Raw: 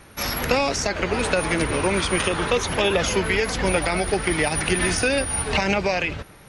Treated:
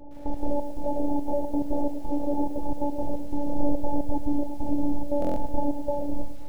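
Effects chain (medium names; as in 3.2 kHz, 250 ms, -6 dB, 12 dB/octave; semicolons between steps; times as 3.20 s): compression 2.5:1, threshold -23 dBFS, peak gain reduction 5.5 dB; 0.69–2.55 s: bass shelf 130 Hz -3.5 dB; hard clipper -26 dBFS, distortion -9 dB; steep low-pass 850 Hz 96 dB/octave; peaking EQ 300 Hz -4.5 dB 0.25 oct; robot voice 288 Hz; simulated room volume 400 m³, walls furnished, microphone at 0.64 m; trance gate "xx.x.xx..xxxxx." 176 bpm -12 dB; buffer glitch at 5.20 s, samples 1024, times 6; bit-crushed delay 108 ms, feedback 55%, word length 9-bit, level -11 dB; trim +8 dB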